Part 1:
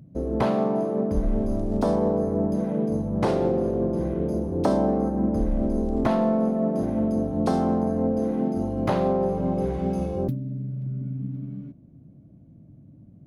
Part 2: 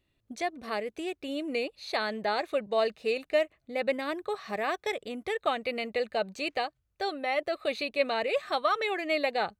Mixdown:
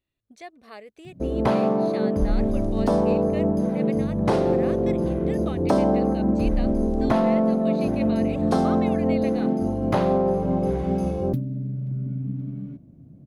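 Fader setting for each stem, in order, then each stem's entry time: +2.0, -9.5 dB; 1.05, 0.00 s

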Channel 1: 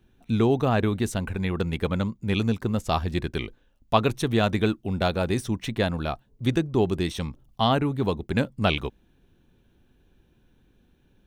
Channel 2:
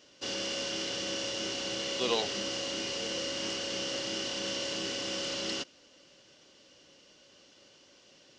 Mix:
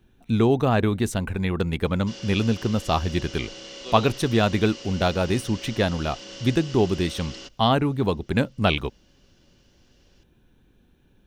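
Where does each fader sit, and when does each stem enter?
+2.0, -5.5 dB; 0.00, 1.85 s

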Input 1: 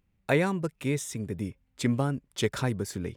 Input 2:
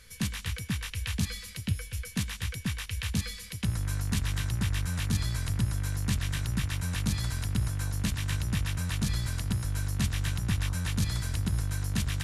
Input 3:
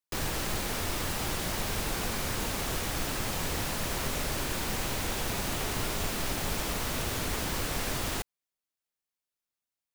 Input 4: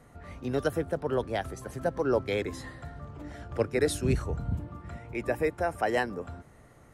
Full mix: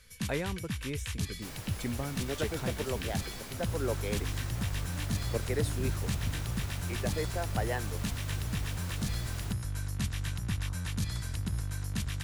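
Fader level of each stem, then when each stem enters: -9.5, -4.5, -13.0, -7.5 dB; 0.00, 0.00, 1.30, 1.75 s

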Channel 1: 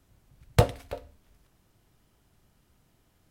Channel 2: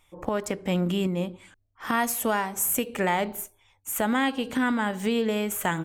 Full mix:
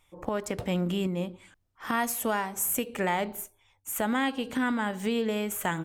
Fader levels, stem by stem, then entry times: -18.0, -3.0 dB; 0.00, 0.00 s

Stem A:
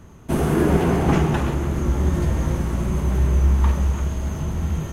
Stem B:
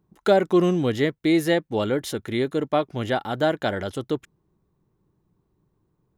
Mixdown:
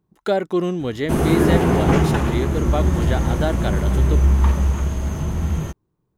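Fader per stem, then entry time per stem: +2.0, -2.0 dB; 0.80, 0.00 s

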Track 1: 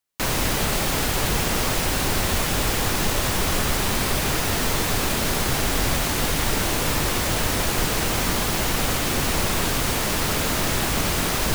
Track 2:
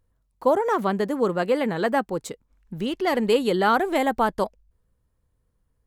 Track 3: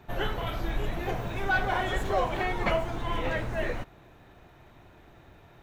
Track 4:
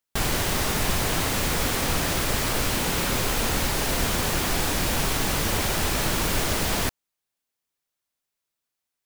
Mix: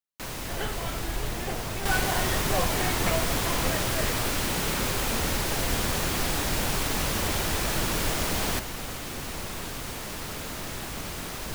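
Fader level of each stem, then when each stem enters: -12.5 dB, off, -2.5 dB, -3.5 dB; 0.00 s, off, 0.40 s, 1.70 s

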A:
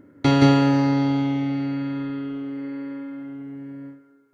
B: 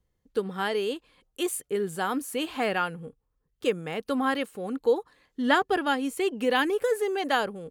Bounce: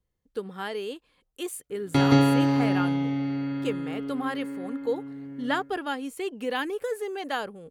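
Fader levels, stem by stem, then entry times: -3.5, -5.0 dB; 1.70, 0.00 s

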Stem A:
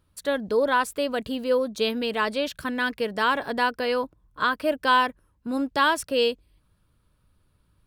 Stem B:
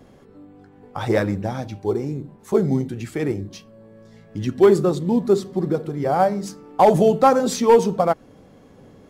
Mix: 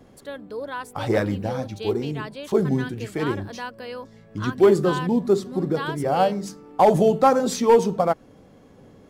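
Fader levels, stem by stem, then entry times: -10.0, -2.0 dB; 0.00, 0.00 s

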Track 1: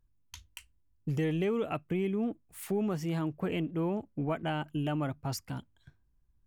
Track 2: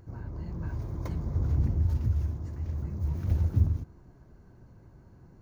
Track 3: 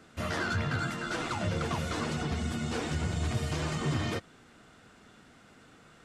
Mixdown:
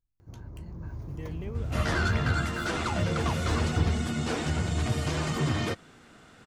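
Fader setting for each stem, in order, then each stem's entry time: -11.5, -4.5, +3.0 dB; 0.00, 0.20, 1.55 s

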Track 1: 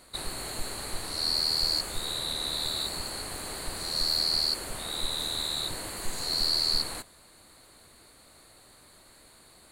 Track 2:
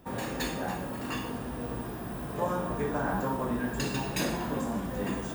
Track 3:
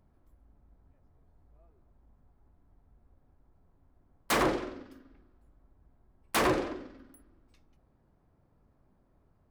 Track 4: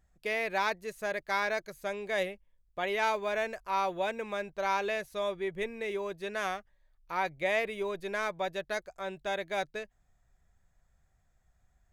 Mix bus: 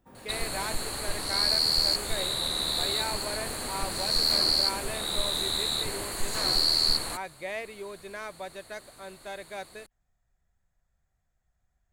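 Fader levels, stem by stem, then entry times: +2.5, -16.5, -12.5, -6.0 dB; 0.15, 0.00, 0.00, 0.00 s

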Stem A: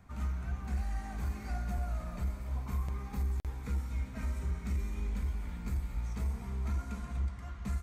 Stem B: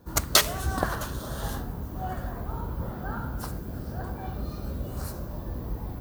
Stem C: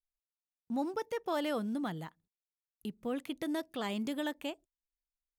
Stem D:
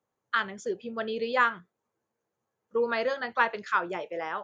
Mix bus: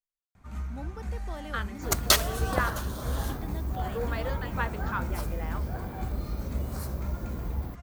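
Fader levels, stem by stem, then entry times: -0.5, -1.5, -8.5, -7.5 dB; 0.35, 1.75, 0.00, 1.20 s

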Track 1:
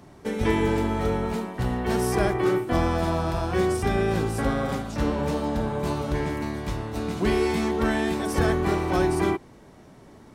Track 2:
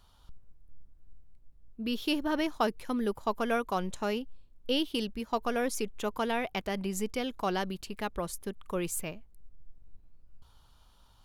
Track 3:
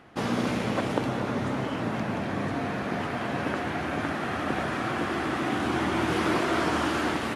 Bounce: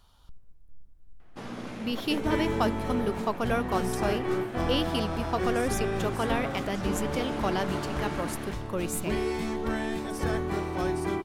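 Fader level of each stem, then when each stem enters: -6.5, +1.0, -11.5 dB; 1.85, 0.00, 1.20 s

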